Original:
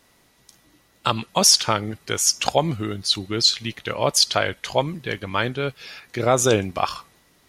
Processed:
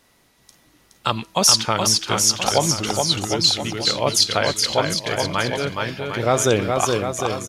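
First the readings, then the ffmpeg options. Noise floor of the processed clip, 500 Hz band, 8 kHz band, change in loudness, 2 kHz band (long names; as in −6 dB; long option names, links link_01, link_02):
−59 dBFS, +2.0 dB, +2.0 dB, +2.0 dB, +2.0 dB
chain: -filter_complex "[0:a]bandreject=frequency=324.3:width_type=h:width=4,bandreject=frequency=648.6:width_type=h:width=4,bandreject=frequency=972.9:width_type=h:width=4,asplit=2[link_01][link_02];[link_02]aecho=0:1:420|756|1025|1240|1412:0.631|0.398|0.251|0.158|0.1[link_03];[link_01][link_03]amix=inputs=2:normalize=0"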